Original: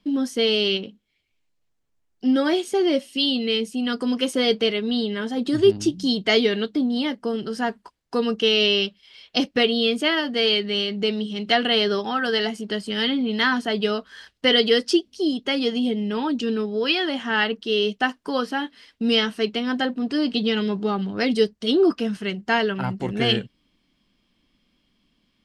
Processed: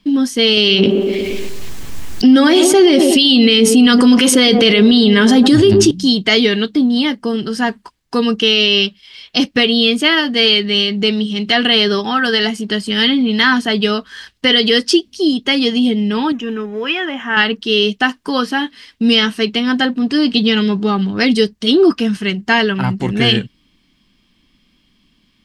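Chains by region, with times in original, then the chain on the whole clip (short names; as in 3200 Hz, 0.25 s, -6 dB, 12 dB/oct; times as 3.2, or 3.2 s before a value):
0.57–5.91 band-limited delay 0.117 s, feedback 40%, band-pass 500 Hz, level -11 dB + fast leveller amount 70%
16.32–17.37 G.711 law mismatch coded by mu + running mean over 10 samples + low shelf 370 Hz -11 dB
whole clip: bell 570 Hz -7 dB 1.2 oct; notch 1400 Hz, Q 20; maximiser +11.5 dB; gain -1 dB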